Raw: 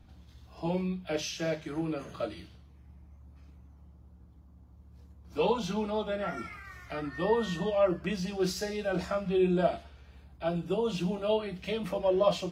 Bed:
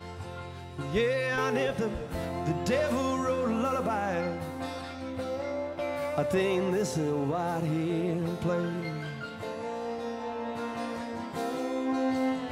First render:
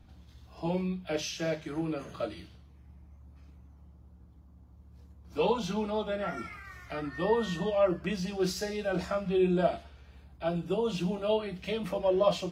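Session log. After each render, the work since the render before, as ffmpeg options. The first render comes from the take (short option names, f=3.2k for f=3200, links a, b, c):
-af anull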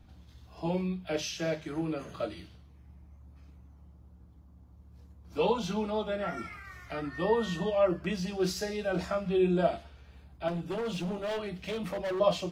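-filter_complex "[0:a]asettb=1/sr,asplit=3[a][b][c];[a]atrim=end=10.484[d];[b]atrim=start=10.48:end=12.2,asetpts=PTS-STARTPTS,afade=t=in:d=0.004:c=qsin,afade=t=out:st=1.716:d=0.004:c=qsin,asoftclip=type=hard:threshold=-30.5dB[e];[c]atrim=start=12.196[f];[d][e]acrossfade=d=0.004:c1=hsin:c2=qsin[g];[g][f]acrossfade=d=0.004:c1=qsin:c2=hsin"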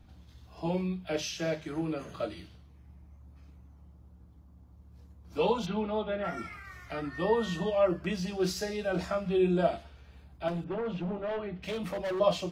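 -filter_complex "[0:a]asplit=3[a][b][c];[a]afade=t=out:st=5.65:d=0.02[d];[b]lowpass=f=3.6k:w=0.5412,lowpass=f=3.6k:w=1.3066,afade=t=in:st=5.65:d=0.02,afade=t=out:st=6.23:d=0.02[e];[c]afade=t=in:st=6.23:d=0.02[f];[d][e][f]amix=inputs=3:normalize=0,asettb=1/sr,asplit=3[g][h][i];[g]atrim=end=10.644[j];[h]atrim=start=10.64:end=11.63,asetpts=PTS-STARTPTS,afade=t=in:d=0.004:c=qsin,afade=t=out:st=0.986:d=0.004:c=qsin,lowpass=2k[k];[i]atrim=start=11.626[l];[j][k]acrossfade=d=0.004:c1=hsin:c2=qsin[m];[m][l]acrossfade=d=0.004:c1=qsin:c2=hsin"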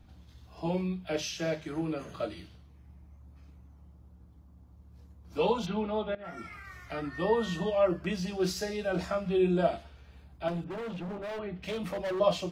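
-filter_complex "[0:a]asettb=1/sr,asplit=3[a][b][c];[a]atrim=end=10.644[d];[b]atrim=start=10.64:end=11.39,asetpts=PTS-STARTPTS,afade=t=in:d=0.004:c=qsin,afade=t=out:st=0.746:d=0.004:c=qsin,asoftclip=type=hard:threshold=-35.5dB[e];[c]atrim=start=11.386[f];[d][e]acrossfade=d=0.004:c1=hsin:c2=qsin[g];[g][f]acrossfade=d=0.004:c1=qsin:c2=hsin,asplit=2[h][i];[h]atrim=end=6.15,asetpts=PTS-STARTPTS,afade=t=out:st=6.146:d=0.004:c=hsin:silence=0.149624[j];[i]atrim=start=6.15,asetpts=PTS-STARTPTS,afade=t=in:d=0.45:silence=0.149624[k];[j][k]concat=n=2:v=0:a=1"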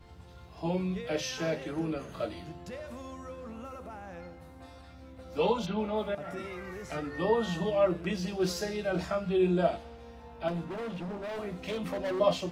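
-filter_complex "[1:a]volume=-15dB[a];[0:a][a]amix=inputs=2:normalize=0"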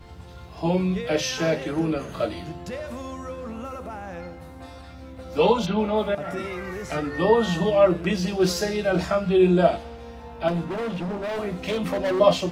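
-af "volume=8.5dB"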